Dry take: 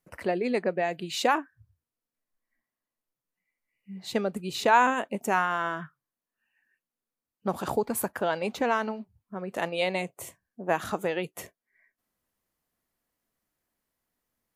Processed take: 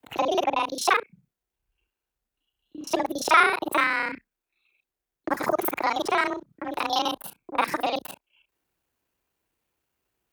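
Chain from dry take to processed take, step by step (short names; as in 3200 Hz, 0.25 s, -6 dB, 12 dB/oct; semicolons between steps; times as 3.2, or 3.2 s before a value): local time reversal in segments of 44 ms; wide varispeed 1.41×; frequency shift +30 Hz; gain +3.5 dB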